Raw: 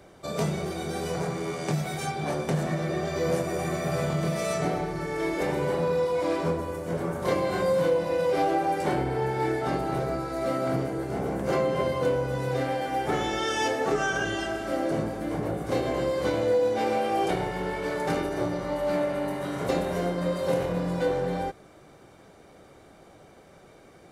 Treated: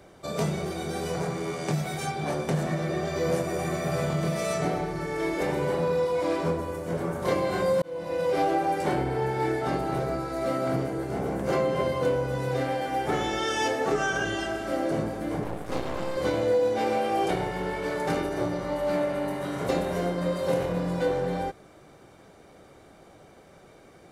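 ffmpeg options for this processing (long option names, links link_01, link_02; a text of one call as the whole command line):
ffmpeg -i in.wav -filter_complex "[0:a]asettb=1/sr,asplit=3[link_01][link_02][link_03];[link_01]atrim=end=15.444[link_04];[link_02]atrim=start=15.44:end=16.17,asetpts=PTS-STARTPTS,afade=type=in:duration=0.004:curve=qsin,afade=type=out:start_time=0.726:duration=0.004:curve=qsin,aeval=exprs='max(val(0),0)':channel_layout=same[link_05];[link_03]atrim=start=16.166[link_06];[link_04][link_05]acrossfade=duration=0.004:curve1=hsin:curve2=qsin[link_07];[link_07][link_06]acrossfade=duration=0.004:curve1=qsin:curve2=hsin,asplit=2[link_08][link_09];[link_08]atrim=end=7.82,asetpts=PTS-STARTPTS,afade=type=out:start_time=7.816:duration=0.004:curve=hsin[link_10];[link_09]atrim=start=7.82,asetpts=PTS-STARTPTS,afade=type=in:duration=0.64:curve=qsin[link_11];[link_10][link_11]concat=n=2:v=0:a=1" out.wav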